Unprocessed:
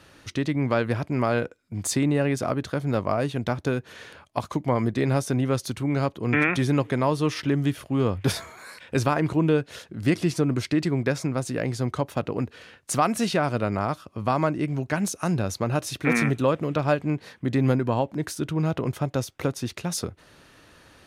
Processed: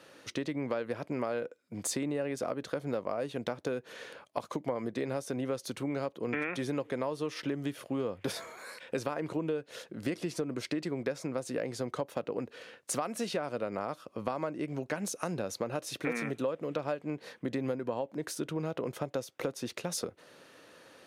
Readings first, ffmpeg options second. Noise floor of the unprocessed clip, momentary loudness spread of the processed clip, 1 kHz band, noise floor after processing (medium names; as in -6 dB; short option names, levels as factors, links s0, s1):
-55 dBFS, 5 LU, -11.0 dB, -62 dBFS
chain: -af "highpass=200,equalizer=f=510:t=o:w=0.45:g=7.5,acompressor=threshold=0.0447:ratio=5,volume=0.668"